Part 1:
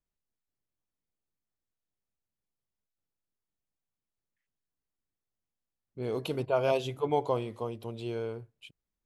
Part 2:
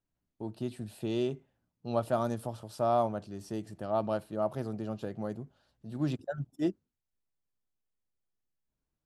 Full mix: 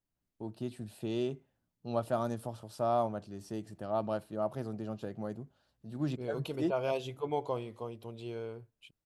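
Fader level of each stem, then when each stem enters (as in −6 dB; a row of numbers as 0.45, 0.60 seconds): −5.5, −2.5 decibels; 0.20, 0.00 seconds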